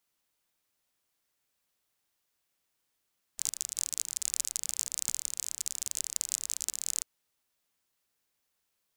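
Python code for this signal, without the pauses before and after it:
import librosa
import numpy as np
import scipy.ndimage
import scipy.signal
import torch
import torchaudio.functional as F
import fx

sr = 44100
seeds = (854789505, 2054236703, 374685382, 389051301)

y = fx.rain(sr, seeds[0], length_s=3.65, drops_per_s=38.0, hz=7200.0, bed_db=-30)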